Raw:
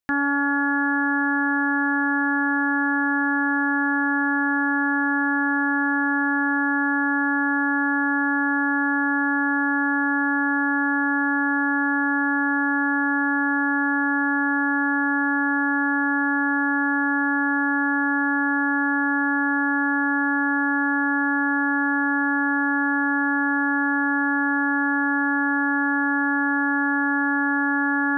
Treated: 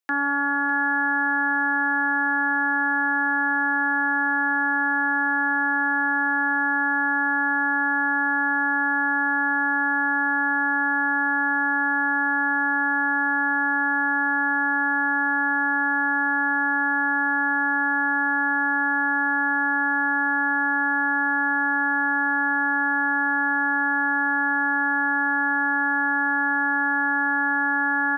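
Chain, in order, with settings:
high-pass filter 320 Hz 24 dB per octave
notch filter 590 Hz, Q 12
on a send: single-tap delay 603 ms −13 dB

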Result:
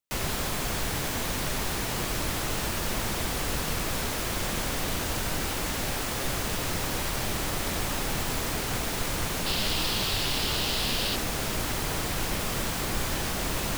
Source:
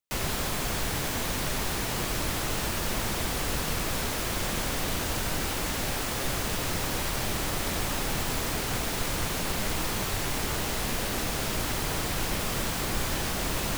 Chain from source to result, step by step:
0:09.46–0:11.16: flat-topped bell 3,700 Hz +8.5 dB 1.1 octaves

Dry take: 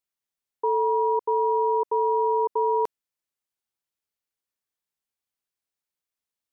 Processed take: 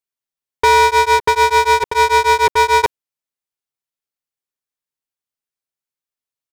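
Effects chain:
comb filter 7.5 ms, depth 42%
leveller curve on the samples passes 5
0:00.84–0:02.84: tremolo along a rectified sine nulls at 6.8 Hz
level +7 dB

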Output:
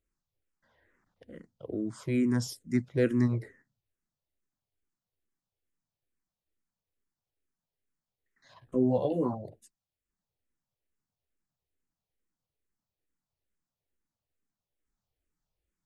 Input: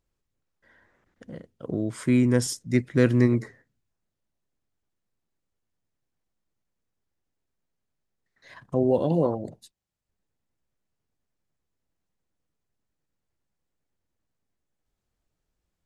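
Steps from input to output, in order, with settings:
dynamic equaliser 3,100 Hz, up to −3 dB, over −48 dBFS, Q 0.81
0:08.61–0:09.33: double-tracking delay 16 ms −3 dB
frequency shifter mixed with the dry sound −2.3 Hz
level −3.5 dB

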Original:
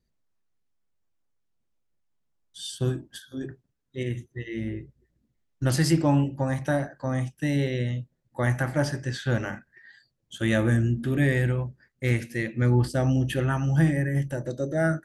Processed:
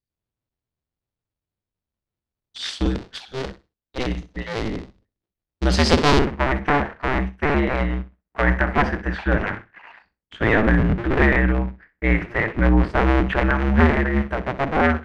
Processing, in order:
sub-harmonics by changed cycles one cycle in 2, inverted
noise gate with hold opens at −53 dBFS
low-pass with resonance 4,500 Hz, resonance Q 1.6, from 0:06.19 2,000 Hz
flutter between parallel walls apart 10.8 metres, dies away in 0.24 s
level +5 dB

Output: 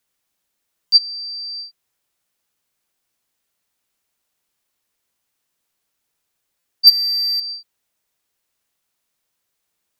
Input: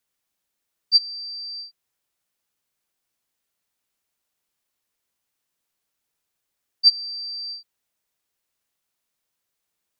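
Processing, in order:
0:06.87–0:07.40: leveller curve on the samples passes 2
buffer that repeats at 0:00.87/0:06.59, samples 256, times 8
level +4.5 dB

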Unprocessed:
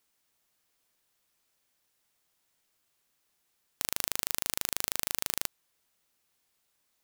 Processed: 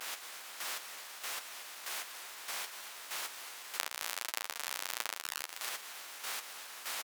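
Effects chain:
compressor on every frequency bin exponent 0.4
square-wave tremolo 1.6 Hz, depth 65%, duty 25%
pitch vibrato 1.1 Hz 96 cents
single-tap delay 240 ms −13 dB
pitch shifter +2 semitones
spectral tilt −3 dB per octave
harmonic generator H 5 −16 dB, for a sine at −9.5 dBFS
flanger 1.4 Hz, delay 7.6 ms, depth 6.6 ms, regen −20%
downward compressor 10 to 1, threshold −46 dBFS, peak gain reduction 14 dB
high-pass filter 1,000 Hz 12 dB per octave
level +18 dB

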